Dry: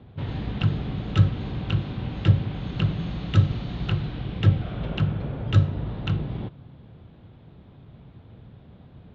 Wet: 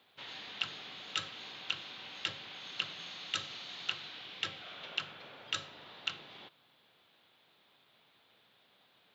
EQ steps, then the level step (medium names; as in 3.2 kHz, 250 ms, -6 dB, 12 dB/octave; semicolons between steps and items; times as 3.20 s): differentiator; bass shelf 120 Hz -12 dB; bass shelf 290 Hz -6.5 dB; +8.5 dB